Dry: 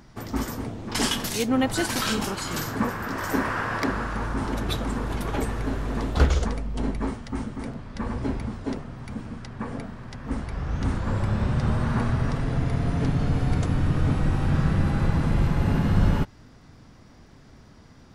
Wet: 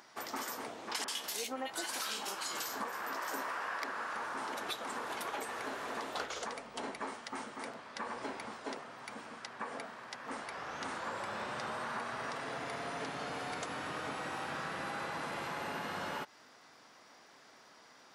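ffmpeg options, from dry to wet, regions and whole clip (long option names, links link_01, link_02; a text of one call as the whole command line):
ffmpeg -i in.wav -filter_complex "[0:a]asettb=1/sr,asplit=3[link_01][link_02][link_03];[link_01]atrim=end=1.044[link_04];[link_02]atrim=start=1.04:end=3.68,asetpts=PTS-STARTPTS,afade=type=in:duration=0.004:curve=qsin,afade=type=out:start_time=2.636:duration=0.004:curve=qsin,aeval=exprs='clip(val(0),-1,0.141)':channel_layout=same,asplit=2[link_05][link_06];[link_06]adelay=15,volume=-11.5dB[link_07];[link_05][link_07]amix=inputs=2:normalize=0,atrim=end_sample=116424,acrossover=split=1700[link_08][link_09];[link_09]adelay=40[link_10];[link_08][link_10]amix=inputs=2:normalize=0,atrim=end_sample=116424[link_11];[link_03]atrim=start=3.676[link_12];[link_04][link_11]acrossfade=duration=0.004:curve1=hsin:curve2=qsin[link_13];[link_13][link_12]acrossfade=duration=0.004:curve1=qsin:curve2=hsin,highpass=640,acompressor=threshold=-36dB:ratio=6" out.wav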